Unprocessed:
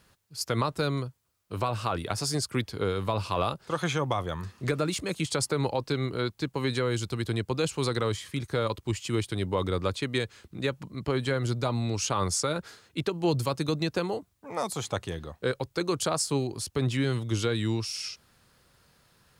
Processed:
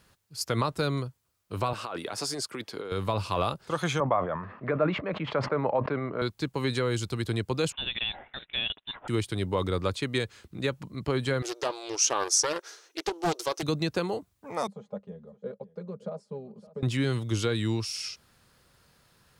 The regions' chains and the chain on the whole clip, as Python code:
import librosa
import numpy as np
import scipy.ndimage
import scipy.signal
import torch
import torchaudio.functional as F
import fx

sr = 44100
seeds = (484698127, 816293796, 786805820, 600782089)

y = fx.chain(x, sr, fx.highpass(hz=290.0, slope=12),
    fx.high_shelf(hz=5000.0, db=-5.5),
    fx.over_compress(threshold_db=-34.0, ratio=-1.0), at=(1.73, 2.92))
y = fx.chain(y, sr, fx.cabinet(low_hz=180.0, low_slope=12, high_hz=2100.0, hz=(350.0, 620.0, 1100.0), db=(-5, 8, 4)),
    fx.sustainer(db_per_s=82.0), at=(4.0, 6.22))
y = fx.chain(y, sr, fx.law_mismatch(coded='A'),
    fx.highpass(hz=440.0, slope=12),
    fx.freq_invert(carrier_hz=3900), at=(7.72, 9.08))
y = fx.chain(y, sr, fx.brickwall_highpass(low_hz=300.0),
    fx.peak_eq(hz=5900.0, db=14.5, octaves=0.21),
    fx.doppler_dist(depth_ms=0.67), at=(11.42, 13.63))
y = fx.chain(y, sr, fx.double_bandpass(hz=320.0, octaves=1.3),
    fx.comb(ms=4.9, depth=0.68),
    fx.echo_single(ms=564, db=-18.5), at=(14.67, 16.83))